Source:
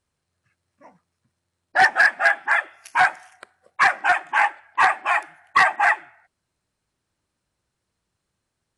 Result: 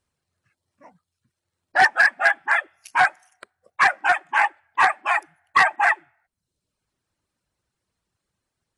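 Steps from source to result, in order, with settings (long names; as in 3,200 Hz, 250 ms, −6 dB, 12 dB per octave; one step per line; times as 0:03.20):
reverb reduction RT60 0.67 s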